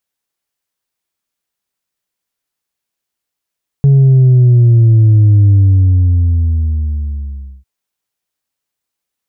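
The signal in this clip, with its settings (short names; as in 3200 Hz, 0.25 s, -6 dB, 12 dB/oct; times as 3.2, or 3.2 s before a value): sub drop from 140 Hz, over 3.80 s, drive 2 dB, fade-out 2.15 s, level -4.5 dB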